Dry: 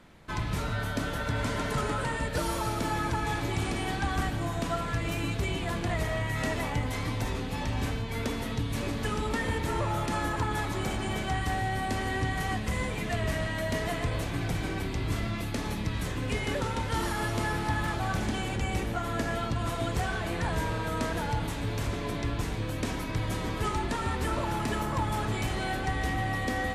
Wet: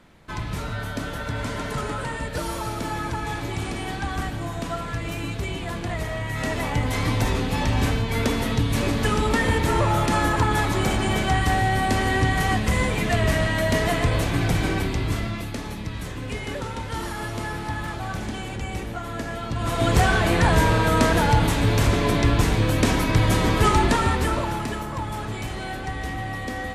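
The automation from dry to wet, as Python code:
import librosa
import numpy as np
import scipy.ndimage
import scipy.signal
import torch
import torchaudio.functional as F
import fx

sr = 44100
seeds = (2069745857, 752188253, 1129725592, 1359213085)

y = fx.gain(x, sr, db=fx.line((6.19, 1.5), (7.1, 9.0), (14.72, 9.0), (15.69, 0.0), (19.42, 0.0), (19.94, 12.0), (23.88, 12.0), (24.84, 0.0)))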